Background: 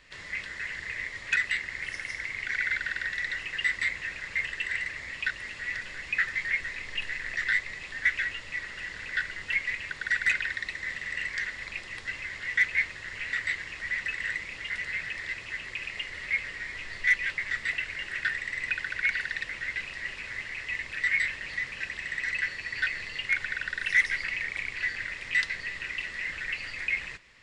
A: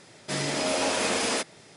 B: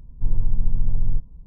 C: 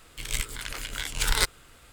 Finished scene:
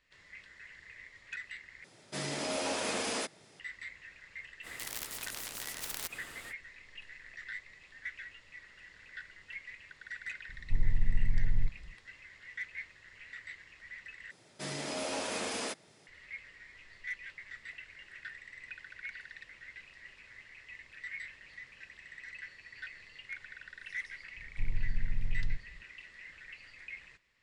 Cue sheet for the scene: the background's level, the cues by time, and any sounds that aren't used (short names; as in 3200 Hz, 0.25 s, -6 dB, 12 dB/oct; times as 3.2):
background -16.5 dB
1.84 replace with A -8 dB
4.62 add C -12.5 dB, fades 0.05 s + spectral compressor 10:1
10.49 add B -7.5 dB
14.31 replace with A -10 dB
24.37 add B -12 dB